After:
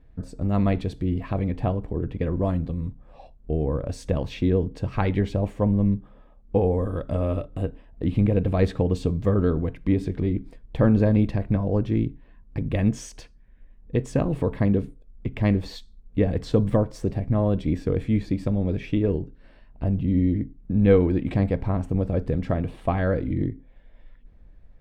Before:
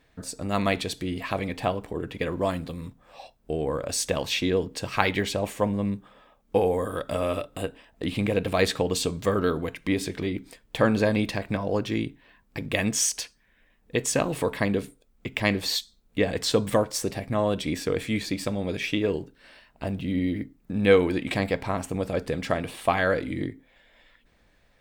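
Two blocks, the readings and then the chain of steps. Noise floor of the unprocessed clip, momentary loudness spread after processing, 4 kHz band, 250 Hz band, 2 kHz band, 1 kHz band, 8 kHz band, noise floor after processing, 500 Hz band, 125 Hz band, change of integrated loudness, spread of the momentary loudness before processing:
-64 dBFS, 9 LU, -13.5 dB, +4.5 dB, -9.0 dB, -4.0 dB, under -15 dB, -52 dBFS, -0.5 dB, +9.0 dB, +2.0 dB, 11 LU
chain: tilt -4.5 dB/oct; gain -5 dB

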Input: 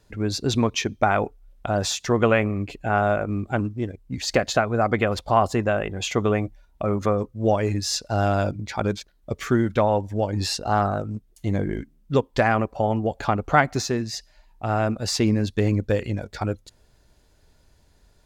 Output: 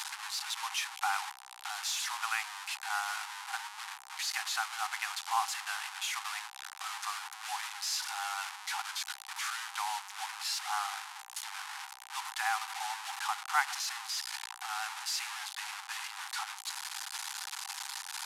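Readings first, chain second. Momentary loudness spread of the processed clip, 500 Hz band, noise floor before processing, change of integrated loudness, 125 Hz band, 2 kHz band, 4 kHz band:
7 LU, -38.5 dB, -59 dBFS, -12.0 dB, under -40 dB, -6.5 dB, -4.0 dB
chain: delta modulation 64 kbps, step -20 dBFS; Chebyshev high-pass 780 Hz, order 8; gain -8.5 dB

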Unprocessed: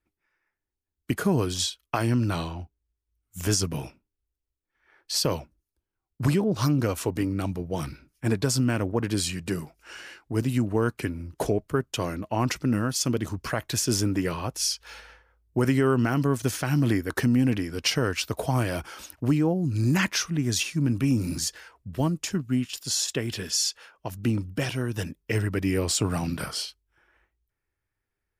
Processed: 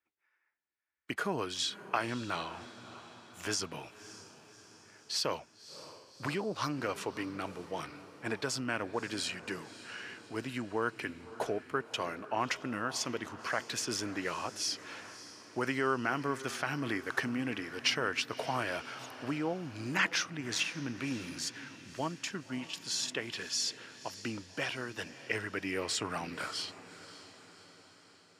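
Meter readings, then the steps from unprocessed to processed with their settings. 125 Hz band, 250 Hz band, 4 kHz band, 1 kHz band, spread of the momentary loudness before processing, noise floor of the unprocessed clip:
-19.0 dB, -13.0 dB, -5.5 dB, -3.0 dB, 10 LU, -85 dBFS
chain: band-pass 1700 Hz, Q 0.57; on a send: diffused feedback echo 0.584 s, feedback 56%, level -15 dB; on the sum: gain -1.5 dB

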